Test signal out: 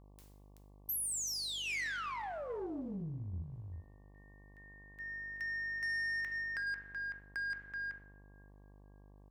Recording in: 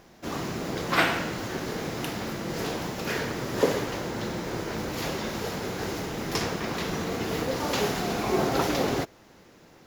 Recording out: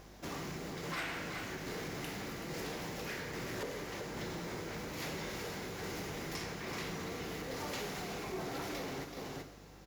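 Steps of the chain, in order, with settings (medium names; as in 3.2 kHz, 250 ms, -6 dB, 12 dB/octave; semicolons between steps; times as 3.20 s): delay 379 ms -12 dB; two-slope reverb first 0.66 s, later 2.9 s, from -25 dB, DRR 7.5 dB; compression 3:1, threshold -35 dBFS; dynamic bell 2.1 kHz, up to +5 dB, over -51 dBFS, Q 2.3; tremolo saw down 1.2 Hz, depth 30%; saturation -30.5 dBFS; tone controls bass 0 dB, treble +3 dB; mains buzz 50 Hz, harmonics 23, -56 dBFS -6 dB/octave; trim -3 dB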